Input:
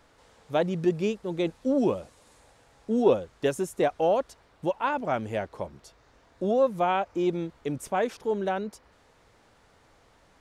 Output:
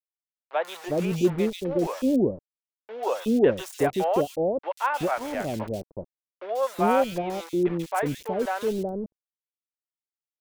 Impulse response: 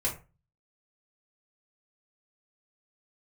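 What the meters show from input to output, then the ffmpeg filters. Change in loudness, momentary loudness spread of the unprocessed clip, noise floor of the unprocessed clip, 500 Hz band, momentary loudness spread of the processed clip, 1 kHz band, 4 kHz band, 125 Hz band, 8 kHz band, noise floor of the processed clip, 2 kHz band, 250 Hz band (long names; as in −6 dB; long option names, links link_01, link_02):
+1.5 dB, 10 LU, −61 dBFS, +1.0 dB, 11 LU, +2.0 dB, +2.5 dB, +3.0 dB, +3.5 dB, below −85 dBFS, +2.5 dB, +3.0 dB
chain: -filter_complex "[0:a]aeval=exprs='val(0)*gte(abs(val(0)),0.0158)':channel_layout=same,acrossover=split=580|2800[link_01][link_02][link_03];[link_03]adelay=140[link_04];[link_01]adelay=370[link_05];[link_05][link_02][link_04]amix=inputs=3:normalize=0,volume=3.5dB"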